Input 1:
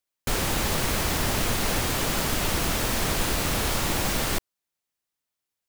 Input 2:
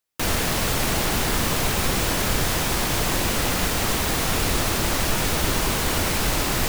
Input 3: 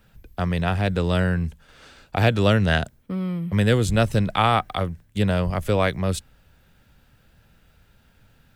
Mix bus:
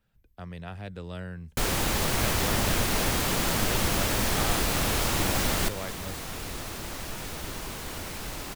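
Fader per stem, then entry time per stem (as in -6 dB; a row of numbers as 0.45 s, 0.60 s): -1.0 dB, -14.0 dB, -16.5 dB; 1.30 s, 2.00 s, 0.00 s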